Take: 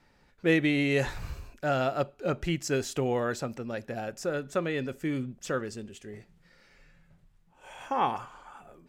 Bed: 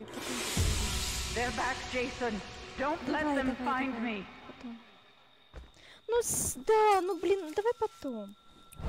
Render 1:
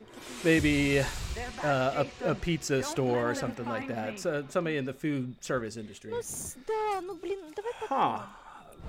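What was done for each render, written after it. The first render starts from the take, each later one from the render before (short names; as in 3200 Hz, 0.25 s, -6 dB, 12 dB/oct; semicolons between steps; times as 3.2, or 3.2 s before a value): add bed -6 dB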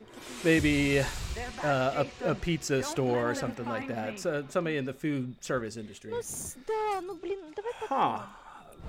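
7.18–7.69 air absorption 75 m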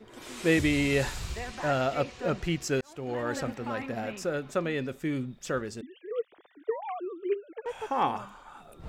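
2.81–3.4 fade in; 5.81–7.66 sine-wave speech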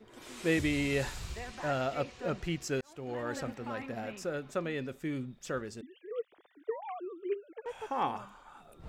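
gain -5 dB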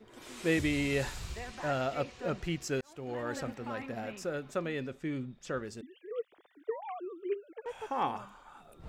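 4.88–5.62 air absorption 51 m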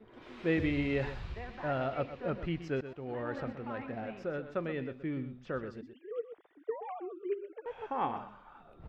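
air absorption 320 m; echo 0.124 s -11.5 dB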